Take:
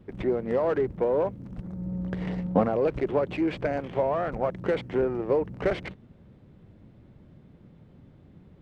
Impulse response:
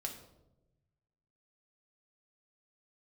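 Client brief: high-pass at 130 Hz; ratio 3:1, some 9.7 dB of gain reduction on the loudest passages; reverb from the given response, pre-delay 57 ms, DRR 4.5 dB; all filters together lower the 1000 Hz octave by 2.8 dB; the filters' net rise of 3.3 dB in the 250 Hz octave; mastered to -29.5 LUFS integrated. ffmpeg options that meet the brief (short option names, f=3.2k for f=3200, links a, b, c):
-filter_complex "[0:a]highpass=130,equalizer=f=250:t=o:g=5.5,equalizer=f=1k:t=o:g=-4.5,acompressor=threshold=-28dB:ratio=3,asplit=2[a][b];[1:a]atrim=start_sample=2205,adelay=57[c];[b][c]afir=irnorm=-1:irlink=0,volume=-3.5dB[d];[a][d]amix=inputs=2:normalize=0,volume=1dB"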